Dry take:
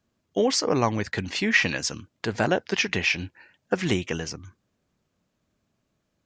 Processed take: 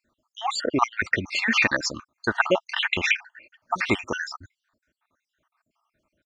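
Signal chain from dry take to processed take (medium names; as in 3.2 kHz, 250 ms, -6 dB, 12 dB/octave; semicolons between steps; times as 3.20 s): random holes in the spectrogram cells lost 64%; peaking EQ 1.3 kHz +14.5 dB 1.5 oct; comb 3.3 ms, depth 38%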